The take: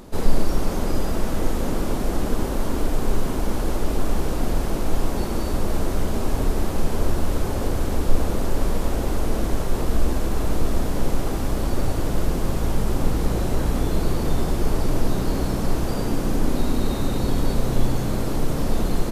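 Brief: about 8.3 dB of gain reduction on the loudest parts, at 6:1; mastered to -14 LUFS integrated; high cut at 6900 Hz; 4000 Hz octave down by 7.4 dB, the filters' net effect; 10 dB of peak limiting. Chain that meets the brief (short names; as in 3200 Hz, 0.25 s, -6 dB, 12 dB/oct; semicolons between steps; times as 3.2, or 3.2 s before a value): LPF 6900 Hz; bell 4000 Hz -9 dB; compressor 6:1, threshold -16 dBFS; gain +18.5 dB; limiter -1.5 dBFS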